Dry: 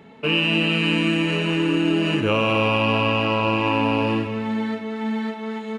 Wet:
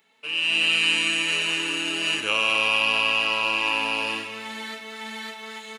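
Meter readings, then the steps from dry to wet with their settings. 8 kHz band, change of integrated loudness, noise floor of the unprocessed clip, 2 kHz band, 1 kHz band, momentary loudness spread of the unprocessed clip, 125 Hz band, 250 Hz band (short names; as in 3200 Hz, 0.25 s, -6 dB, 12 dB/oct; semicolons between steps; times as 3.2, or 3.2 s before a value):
n/a, -0.5 dB, -34 dBFS, +2.0 dB, -5.0 dB, 8 LU, -22.0 dB, -16.5 dB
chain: differentiator; AGC gain up to 12 dB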